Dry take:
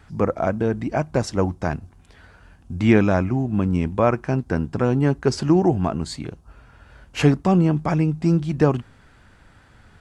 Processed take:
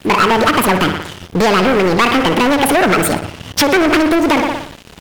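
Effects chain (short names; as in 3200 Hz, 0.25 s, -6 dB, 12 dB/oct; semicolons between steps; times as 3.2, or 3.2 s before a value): darkening echo 0.119 s, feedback 61%, low-pass 5000 Hz, level -14.5 dB; compressor, threshold -20 dBFS, peak gain reduction 10 dB; sample leveller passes 5; dynamic EQ 1100 Hz, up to +6 dB, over -32 dBFS, Q 1; speed mistake 7.5 ips tape played at 15 ips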